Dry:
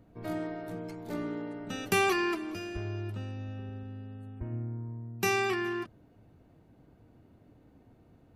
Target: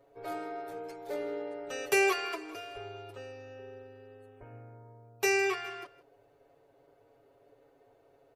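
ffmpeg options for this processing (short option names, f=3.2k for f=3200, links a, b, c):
-af "lowshelf=f=320:t=q:w=3:g=-13.5,aecho=1:1:7.2:0.99,aecho=1:1:160:0.112,volume=-3.5dB"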